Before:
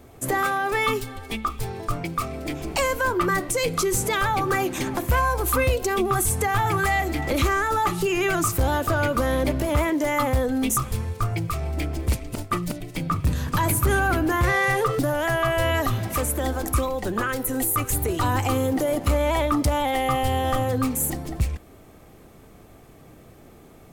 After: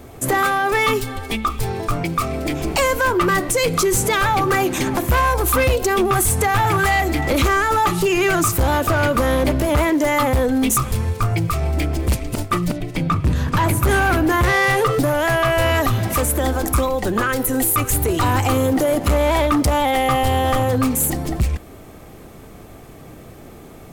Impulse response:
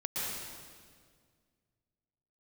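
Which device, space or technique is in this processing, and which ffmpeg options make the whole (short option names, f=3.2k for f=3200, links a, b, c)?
clipper into limiter: -filter_complex "[0:a]asettb=1/sr,asplit=3[a][b][c];[a]atrim=end=12.674[d];[b]atrim=start=12.67:end=13.83,asetpts=PTS-STARTPTS,afade=t=in:d=0.004:c=qsin,afade=t=out:st=1.156:d=0.004:c=qsin,aemphasis=mode=reproduction:type=cd[e];[c]atrim=start=13.826[f];[d][e]acrossfade=d=0.004:c1=hsin:c2=qsin[g];[g][f]acrossfade=d=0.004:c1=qsin:c2=hsin,asoftclip=type=hard:threshold=-18.5dB,alimiter=limit=-21dB:level=0:latency=1:release=87,volume=8.5dB"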